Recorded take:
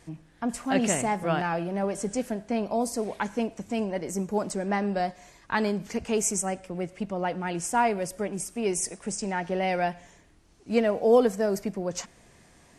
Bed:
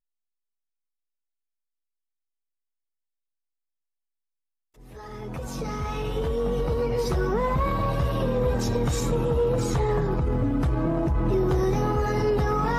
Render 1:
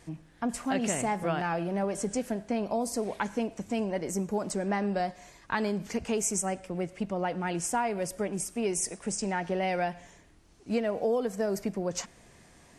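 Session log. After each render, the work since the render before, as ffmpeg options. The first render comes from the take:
-af "acompressor=threshold=0.0562:ratio=6"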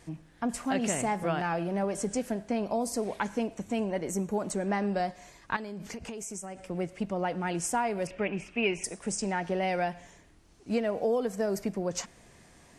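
-filter_complex "[0:a]asettb=1/sr,asplit=3[s0][s1][s2];[s0]atrim=end=3.554[s3];[s1]atrim=start=3.55:end=4.68,asetpts=PTS-STARTPTS,afade=t=in:d=0.004:c=qsin,afade=t=out:st=1.126:d=0.004:c=qsin,bandreject=f=5000:w=5.8[s4];[s2]atrim=start=4.676[s5];[s3][s4]acrossfade=d=0.004:c1=hsin:c2=qsin[s6];[s6][s5]acrossfade=d=0.004:c1=qsin:c2=hsin,asettb=1/sr,asplit=3[s7][s8][s9];[s7]atrim=end=5.564[s10];[s8]atrim=start=5.56:end=6.68,asetpts=PTS-STARTPTS,afade=t=in:d=0.004:c=qsin,afade=t=out:st=1.116:d=0.004:c=qsin,acompressor=threshold=0.0178:ratio=16:attack=3.2:release=140:knee=1:detection=peak[s11];[s9]atrim=start=6.676[s12];[s10][s11]acrossfade=d=0.004:c1=hsin:c2=qsin[s13];[s13][s12]acrossfade=d=0.004:c1=qsin:c2=hsin,asettb=1/sr,asplit=3[s14][s15][s16];[s14]atrim=end=8.074[s17];[s15]atrim=start=8.07:end=8.84,asetpts=PTS-STARTPTS,afade=t=in:d=0.004:c=qsin,afade=t=out:st=0.766:d=0.004:c=qsin,lowpass=f=2600:t=q:w=5.4[s18];[s16]atrim=start=8.836[s19];[s17][s18]acrossfade=d=0.004:c1=hsin:c2=qsin[s20];[s20][s19]acrossfade=d=0.004:c1=qsin:c2=hsin"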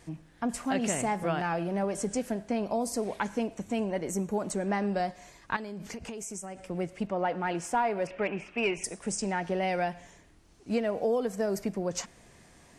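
-filter_complex "[0:a]asettb=1/sr,asplit=3[s0][s1][s2];[s0]atrim=end=7.074[s3];[s1]atrim=start=7.07:end=8.77,asetpts=PTS-STARTPTS,afade=t=in:d=0.004:c=qsin,afade=t=out:st=1.696:d=0.004:c=qsin,asplit=2[s4][s5];[s5]highpass=f=720:p=1,volume=3.55,asoftclip=type=tanh:threshold=0.188[s6];[s4][s6]amix=inputs=2:normalize=0,lowpass=f=1500:p=1,volume=0.501[s7];[s2]atrim=start=8.766[s8];[s3][s7]acrossfade=d=0.004:c1=hsin:c2=qsin[s9];[s9][s8]acrossfade=d=0.004:c1=qsin:c2=hsin"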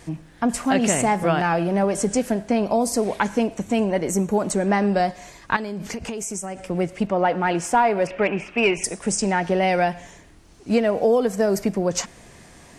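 -af "volume=2.99"

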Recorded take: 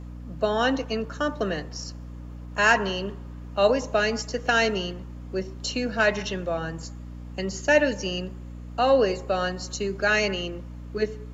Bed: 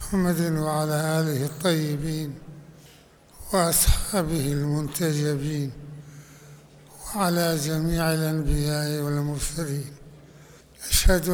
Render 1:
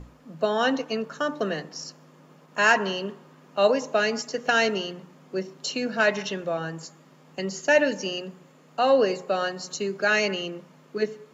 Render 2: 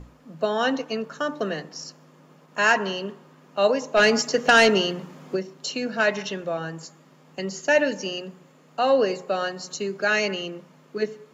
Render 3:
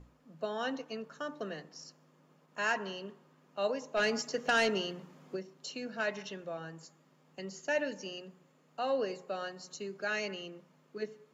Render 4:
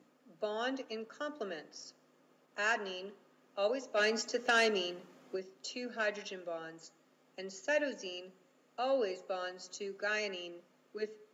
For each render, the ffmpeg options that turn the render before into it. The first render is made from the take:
-af "bandreject=f=60:t=h:w=6,bandreject=f=120:t=h:w=6,bandreject=f=180:t=h:w=6,bandreject=f=240:t=h:w=6,bandreject=f=300:t=h:w=6"
-filter_complex "[0:a]asplit=3[s0][s1][s2];[s0]afade=t=out:st=3.96:d=0.02[s3];[s1]aeval=exprs='0.335*sin(PI/2*1.58*val(0)/0.335)':c=same,afade=t=in:st=3.96:d=0.02,afade=t=out:st=5.35:d=0.02[s4];[s2]afade=t=in:st=5.35:d=0.02[s5];[s3][s4][s5]amix=inputs=3:normalize=0"
-af "volume=0.237"
-af "highpass=f=230:w=0.5412,highpass=f=230:w=1.3066,equalizer=f=990:w=4.9:g=-6"

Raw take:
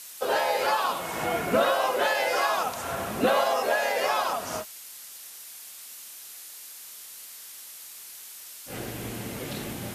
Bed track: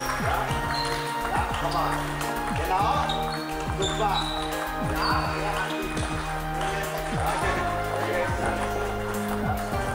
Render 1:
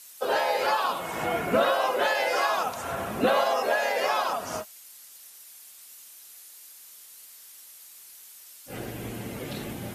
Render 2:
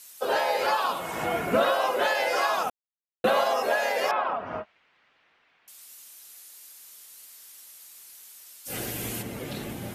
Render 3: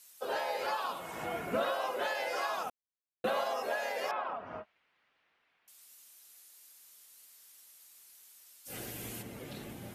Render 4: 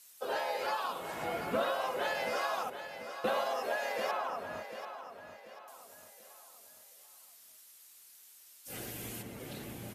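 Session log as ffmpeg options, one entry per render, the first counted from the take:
-af "afftdn=nr=7:nf=-44"
-filter_complex "[0:a]asettb=1/sr,asplit=3[s0][s1][s2];[s0]atrim=end=4.114[s3];[s1]atrim=start=4.11:end=5.68,asetpts=PTS-STARTPTS,afade=t=in:d=0.004:c=qsin,afade=t=out:st=1.566:d=0.004:c=qsin,lowpass=f=2500:w=0.5412,lowpass=f=2500:w=1.3066[s4];[s2]atrim=start=5.676[s5];[s3][s4]acrossfade=d=0.004:c1=hsin:c2=qsin[s6];[s6][s5]acrossfade=d=0.004:c1=qsin:c2=hsin,asplit=3[s7][s8][s9];[s7]afade=t=out:st=8.65:d=0.02[s10];[s8]highshelf=f=2600:g=12,afade=t=in:st=8.65:d=0.02,afade=t=out:st=9.21:d=0.02[s11];[s9]afade=t=in:st=9.21:d=0.02[s12];[s10][s11][s12]amix=inputs=3:normalize=0,asplit=3[s13][s14][s15];[s13]atrim=end=2.7,asetpts=PTS-STARTPTS,afade=t=out:st=2.696:d=0.004:c=hsin[s16];[s14]atrim=start=2.7:end=3.24,asetpts=PTS-STARTPTS,volume=0[s17];[s15]atrim=start=3.24,asetpts=PTS-STARTPTS,afade=t=in:d=0.004:c=hsin[s18];[s16][s17][s18]concat=n=3:v=0:a=1"
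-af "volume=0.335"
-af "aecho=1:1:738|1476|2214|2952:0.316|0.13|0.0532|0.0218"

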